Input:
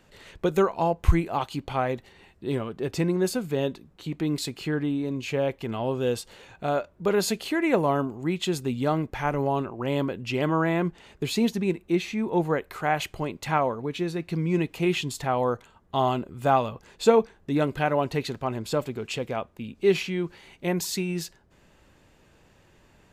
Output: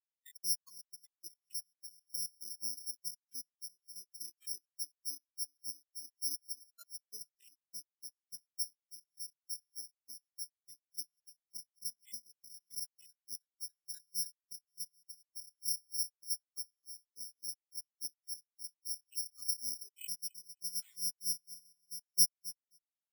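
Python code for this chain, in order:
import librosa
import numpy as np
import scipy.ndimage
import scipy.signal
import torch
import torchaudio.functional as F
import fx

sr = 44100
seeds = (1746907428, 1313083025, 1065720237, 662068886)

p1 = fx.law_mismatch(x, sr, coded='A')
p2 = fx.highpass(p1, sr, hz=40.0, slope=6)
p3 = fx.fixed_phaser(p2, sr, hz=1700.0, stages=4)
p4 = 10.0 ** (-22.5 / 20.0) * np.tanh(p3 / 10.0 ** (-22.5 / 20.0))
p5 = p3 + F.gain(torch.from_numpy(p4), -9.5).numpy()
p6 = p5 * (1.0 - 0.85 / 2.0 + 0.85 / 2.0 * np.cos(2.0 * np.pi * 3.4 * (np.arange(len(p5)) / sr)))
p7 = fx.graphic_eq(p6, sr, hz=(125, 250, 2000, 8000), db=(11, 5, 9, 10))
p8 = fx.level_steps(p7, sr, step_db=24)
p9 = p8 + fx.echo_feedback(p8, sr, ms=265, feedback_pct=53, wet_db=-9.0, dry=0)
p10 = fx.over_compress(p9, sr, threshold_db=-50.0, ratio=-1.0)
p11 = (np.kron(p10[::8], np.eye(8)[0]) * 8)[:len(p10)]
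p12 = fx.low_shelf(p11, sr, hz=220.0, db=-8.0)
p13 = fx.spectral_expand(p12, sr, expansion=4.0)
y = F.gain(torch.from_numpy(p13), -4.0).numpy()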